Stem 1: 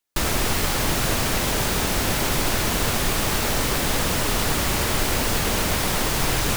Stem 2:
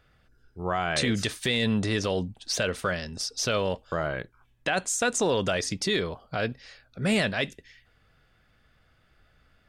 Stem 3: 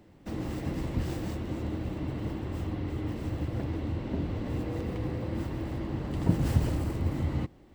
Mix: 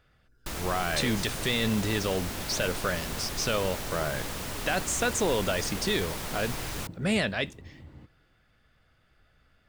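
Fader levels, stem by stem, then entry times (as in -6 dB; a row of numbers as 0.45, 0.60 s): -13.0, -2.0, -19.0 dB; 0.30, 0.00, 0.60 s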